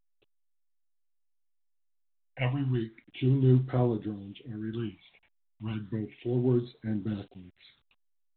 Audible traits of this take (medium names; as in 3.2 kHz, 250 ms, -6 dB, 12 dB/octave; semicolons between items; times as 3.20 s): a quantiser's noise floor 10-bit, dither none; phasing stages 6, 0.33 Hz, lowest notch 340–2600 Hz; tremolo triangle 0.59 Hz, depth 55%; A-law